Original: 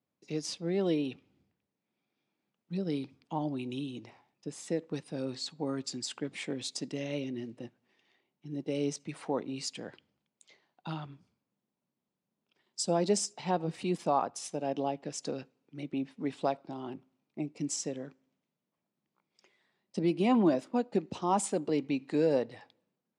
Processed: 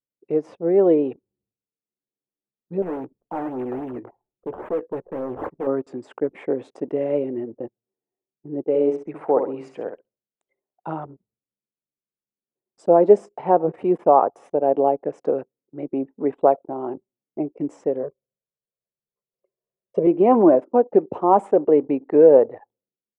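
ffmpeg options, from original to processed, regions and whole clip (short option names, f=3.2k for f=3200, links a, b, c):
-filter_complex "[0:a]asettb=1/sr,asplit=3[a][b][c];[a]atrim=end=2.824[d];[b]atrim=start=2.82:end=5.67,asetpts=PTS-STARTPTS,afade=t=in:d=0.004:c=qsin,afade=t=out:st=2.846:d=0.004:c=qsin,acrusher=samples=14:mix=1:aa=0.000001:lfo=1:lforange=14:lforate=3.6,asoftclip=type=hard:threshold=-36dB,asplit=2[e][f];[f]adelay=16,volume=-11dB[g];[e][g]amix=inputs=2:normalize=0,atrim=end_sample=125685[h];[c]atrim=start=5.666[i];[d][h]acrossfade=d=0.004:c1=hsin:c2=qsin[j];[j][i]acrossfade=d=0.004:c1=qsin:c2=hsin,asettb=1/sr,asplit=3[k][l][m];[k]atrim=end=8.654[n];[l]atrim=start=8.65:end=10.88,asetpts=PTS-STARTPTS,afade=t=in:d=0.004:c=qsin,afade=t=out:st=2.226:d=0.004:c=qsin,lowshelf=f=370:g=-4,aecho=1:1:66|132|198|264:0.447|0.13|0.0376|0.0109,atrim=end_sample=98343[o];[m]atrim=start=10.876[p];[n][o]acrossfade=d=0.004:c1=hsin:c2=qsin[q];[q][p]acrossfade=d=0.004:c1=qsin:c2=hsin,asettb=1/sr,asplit=3[r][s][t];[r]atrim=end=18.034[u];[s]atrim=start=18.03:end=20.07,asetpts=PTS-STARTPTS,afade=t=in:d=0.004:c=qsin,afade=t=out:st=2.036:d=0.004:c=qsin,equalizer=f=1.6k:t=o:w=0.35:g=-7.5,aecho=1:1:1.8:0.86,atrim=end_sample=89964[v];[t]atrim=start=20.066[w];[u][v]acrossfade=d=0.004:c1=hsin:c2=qsin[x];[x][w]acrossfade=d=0.004:c1=qsin:c2=hsin,highshelf=f=7.2k:g=8.5,anlmdn=0.01,firequalizer=gain_entry='entry(190,0);entry(420,15);entry(4300,-29)':delay=0.05:min_phase=1,volume=2.5dB"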